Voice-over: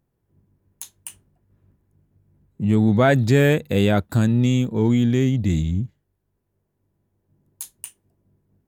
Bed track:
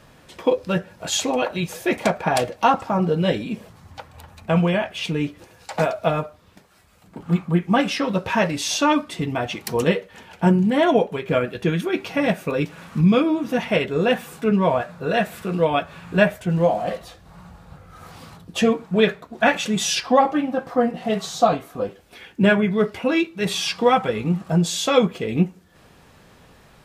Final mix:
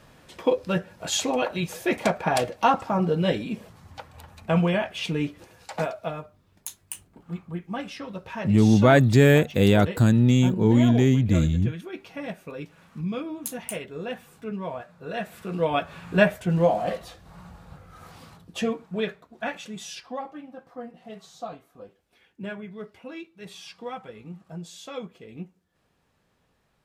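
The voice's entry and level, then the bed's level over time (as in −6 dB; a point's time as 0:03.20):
5.85 s, 0.0 dB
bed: 0:05.58 −3 dB
0:06.29 −14 dB
0:14.91 −14 dB
0:15.89 −2 dB
0:17.66 −2 dB
0:20.32 −19 dB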